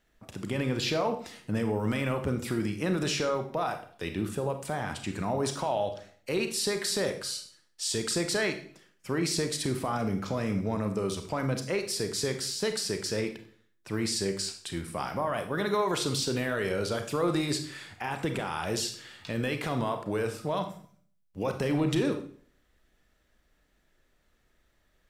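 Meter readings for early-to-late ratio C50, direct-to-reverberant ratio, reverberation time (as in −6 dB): 9.5 dB, 6.5 dB, 0.50 s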